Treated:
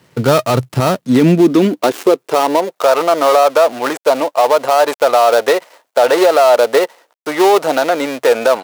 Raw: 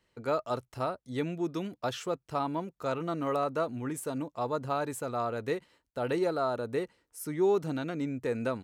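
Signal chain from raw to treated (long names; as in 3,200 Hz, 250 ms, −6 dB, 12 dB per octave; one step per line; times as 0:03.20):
gap after every zero crossing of 0.17 ms
high-pass filter sweep 130 Hz → 640 Hz, 0:00.61–0:02.86
boost into a limiter +24.5 dB
level −1 dB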